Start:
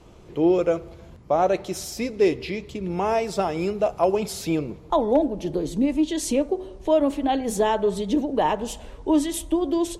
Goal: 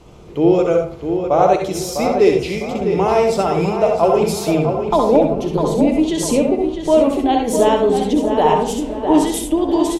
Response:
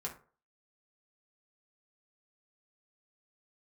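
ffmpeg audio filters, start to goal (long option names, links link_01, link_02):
-filter_complex "[0:a]equalizer=frequency=1700:width_type=o:width=0.21:gain=-5,asplit=2[link_01][link_02];[link_02]adelay=653,lowpass=frequency=3300:poles=1,volume=-7dB,asplit=2[link_03][link_04];[link_04]adelay=653,lowpass=frequency=3300:poles=1,volume=0.39,asplit=2[link_05][link_06];[link_06]adelay=653,lowpass=frequency=3300:poles=1,volume=0.39,asplit=2[link_07][link_08];[link_08]adelay=653,lowpass=frequency=3300:poles=1,volume=0.39,asplit=2[link_09][link_10];[link_10]adelay=653,lowpass=frequency=3300:poles=1,volume=0.39[link_11];[link_01][link_03][link_05][link_07][link_09][link_11]amix=inputs=6:normalize=0,asplit=2[link_12][link_13];[1:a]atrim=start_sample=2205,adelay=64[link_14];[link_13][link_14]afir=irnorm=-1:irlink=0,volume=-2.5dB[link_15];[link_12][link_15]amix=inputs=2:normalize=0,volume=5dB"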